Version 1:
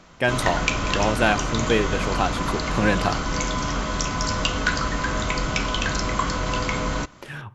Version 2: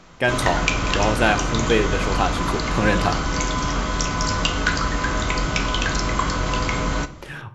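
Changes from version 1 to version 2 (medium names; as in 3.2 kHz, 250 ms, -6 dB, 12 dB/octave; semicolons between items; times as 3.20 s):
speech: send +9.5 dB; background: send on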